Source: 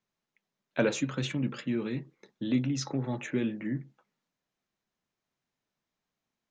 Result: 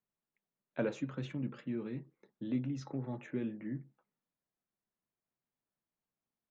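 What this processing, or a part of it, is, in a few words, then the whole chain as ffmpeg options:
through cloth: -af "highshelf=frequency=2800:gain=-15,volume=-7dB"

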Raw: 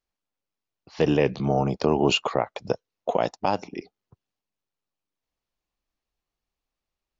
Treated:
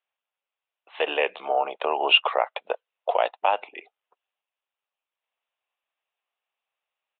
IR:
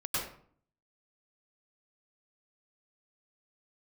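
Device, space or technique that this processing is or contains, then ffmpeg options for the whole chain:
musical greeting card: -af "aresample=8000,aresample=44100,highpass=frequency=570:width=0.5412,highpass=frequency=570:width=1.3066,equalizer=frequency=2700:width_type=o:width=0.33:gain=4.5,volume=3.5dB"

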